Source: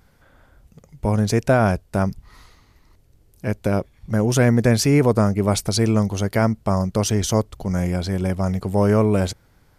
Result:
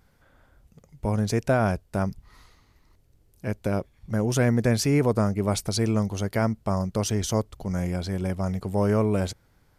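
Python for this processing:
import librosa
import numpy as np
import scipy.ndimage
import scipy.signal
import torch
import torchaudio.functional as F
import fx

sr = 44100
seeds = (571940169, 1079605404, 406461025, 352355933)

y = x * librosa.db_to_amplitude(-5.5)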